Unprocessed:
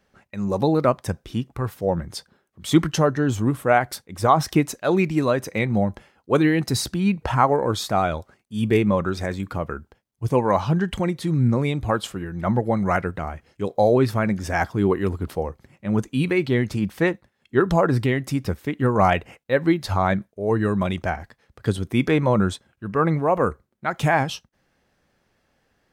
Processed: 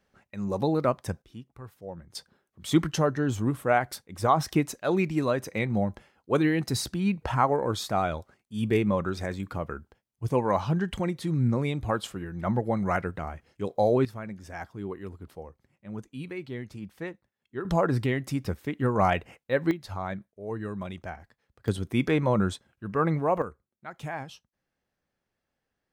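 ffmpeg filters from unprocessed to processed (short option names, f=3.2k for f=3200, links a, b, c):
-af "asetnsamples=n=441:p=0,asendcmd='1.22 volume volume -17.5dB;2.15 volume volume -5.5dB;14.05 volume volume -16dB;17.65 volume volume -5.5dB;19.71 volume volume -13dB;21.68 volume volume -5dB;23.42 volume volume -16dB',volume=-6dB"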